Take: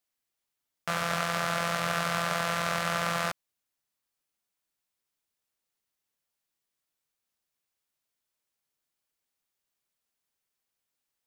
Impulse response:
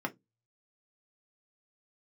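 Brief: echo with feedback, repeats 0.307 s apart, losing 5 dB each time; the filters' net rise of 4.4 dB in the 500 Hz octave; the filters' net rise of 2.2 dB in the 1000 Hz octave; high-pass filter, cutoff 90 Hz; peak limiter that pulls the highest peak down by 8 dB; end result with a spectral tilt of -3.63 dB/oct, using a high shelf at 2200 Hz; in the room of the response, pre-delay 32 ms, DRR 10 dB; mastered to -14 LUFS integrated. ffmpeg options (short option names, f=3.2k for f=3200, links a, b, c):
-filter_complex "[0:a]highpass=90,equalizer=f=500:t=o:g=5,equalizer=f=1k:t=o:g=4,highshelf=f=2.2k:g=-8.5,alimiter=limit=-22dB:level=0:latency=1,aecho=1:1:307|614|921|1228|1535|1842|2149:0.562|0.315|0.176|0.0988|0.0553|0.031|0.0173,asplit=2[a][b];[1:a]atrim=start_sample=2205,adelay=32[c];[b][c]afir=irnorm=-1:irlink=0,volume=-14.5dB[d];[a][d]amix=inputs=2:normalize=0,volume=19.5dB"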